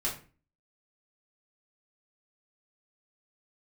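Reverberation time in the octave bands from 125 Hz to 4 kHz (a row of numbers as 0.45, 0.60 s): 0.50, 0.50, 0.40, 0.35, 0.35, 0.25 s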